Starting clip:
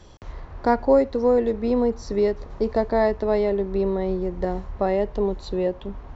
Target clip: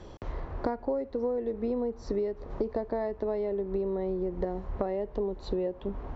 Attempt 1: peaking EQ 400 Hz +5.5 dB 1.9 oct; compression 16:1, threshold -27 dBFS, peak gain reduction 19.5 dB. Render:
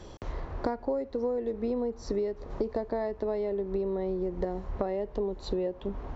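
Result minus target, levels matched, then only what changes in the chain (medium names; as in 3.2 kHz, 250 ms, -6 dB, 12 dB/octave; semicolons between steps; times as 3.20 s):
4 kHz band +4.0 dB
add first: low-pass 3.2 kHz 6 dB/octave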